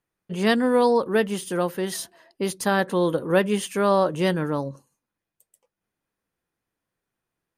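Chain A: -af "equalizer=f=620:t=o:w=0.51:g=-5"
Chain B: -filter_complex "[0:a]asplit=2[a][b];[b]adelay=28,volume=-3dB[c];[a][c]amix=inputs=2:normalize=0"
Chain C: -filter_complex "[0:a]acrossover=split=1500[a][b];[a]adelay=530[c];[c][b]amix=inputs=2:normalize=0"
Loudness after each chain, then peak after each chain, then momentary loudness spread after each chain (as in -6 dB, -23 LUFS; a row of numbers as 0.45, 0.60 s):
-24.0, -21.5, -24.0 LUFS; -9.0, -7.0, -9.0 dBFS; 10, 11, 11 LU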